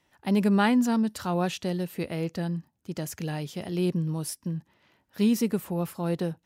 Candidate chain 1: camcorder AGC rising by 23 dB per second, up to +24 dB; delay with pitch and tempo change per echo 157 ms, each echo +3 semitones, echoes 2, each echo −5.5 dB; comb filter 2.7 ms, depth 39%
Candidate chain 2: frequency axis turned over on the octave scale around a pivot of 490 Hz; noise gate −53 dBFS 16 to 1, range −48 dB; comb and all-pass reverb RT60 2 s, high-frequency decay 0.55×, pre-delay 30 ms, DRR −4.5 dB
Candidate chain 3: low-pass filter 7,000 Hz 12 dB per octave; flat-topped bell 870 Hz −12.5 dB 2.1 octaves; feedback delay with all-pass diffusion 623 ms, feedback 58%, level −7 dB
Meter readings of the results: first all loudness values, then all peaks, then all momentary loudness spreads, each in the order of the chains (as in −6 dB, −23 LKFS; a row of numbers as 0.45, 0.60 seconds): −27.0, −24.0, −28.0 LKFS; −11.0, −6.0, −15.0 dBFS; 8, 14, 11 LU